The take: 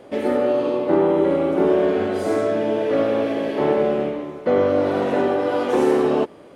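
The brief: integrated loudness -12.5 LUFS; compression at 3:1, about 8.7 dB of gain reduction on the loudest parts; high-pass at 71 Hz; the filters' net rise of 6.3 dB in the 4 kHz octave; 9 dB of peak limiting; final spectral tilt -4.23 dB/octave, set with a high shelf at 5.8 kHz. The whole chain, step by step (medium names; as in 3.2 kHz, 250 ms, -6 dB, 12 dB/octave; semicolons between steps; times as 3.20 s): high-pass 71 Hz; peaking EQ 4 kHz +7 dB; treble shelf 5.8 kHz +4.5 dB; compression 3:1, threshold -25 dBFS; trim +18 dB; peak limiter -4 dBFS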